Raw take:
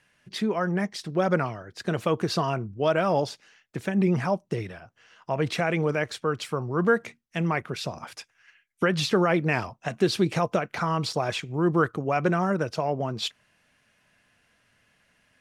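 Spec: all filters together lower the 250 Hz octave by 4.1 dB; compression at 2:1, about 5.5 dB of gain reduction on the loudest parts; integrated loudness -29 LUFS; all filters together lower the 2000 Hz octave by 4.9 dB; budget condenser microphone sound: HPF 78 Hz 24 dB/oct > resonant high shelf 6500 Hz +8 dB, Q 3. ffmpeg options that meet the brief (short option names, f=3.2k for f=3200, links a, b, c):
-af "equalizer=f=250:t=o:g=-7,equalizer=f=2k:t=o:g=-6,acompressor=threshold=-30dB:ratio=2,highpass=f=78:w=0.5412,highpass=f=78:w=1.3066,highshelf=f=6.5k:t=q:w=3:g=8,volume=4dB"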